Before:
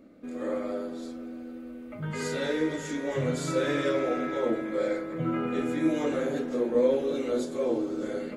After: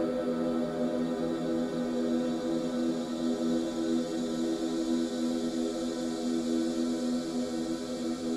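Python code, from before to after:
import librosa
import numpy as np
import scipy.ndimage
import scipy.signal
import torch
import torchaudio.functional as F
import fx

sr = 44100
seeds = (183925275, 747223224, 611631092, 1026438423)

y = fx.rev_gated(x, sr, seeds[0], gate_ms=80, shape='falling', drr_db=8.5)
y = fx.paulstretch(y, sr, seeds[1], factor=44.0, window_s=0.25, from_s=0.9)
y = F.gain(torch.from_numpy(y), 6.0).numpy()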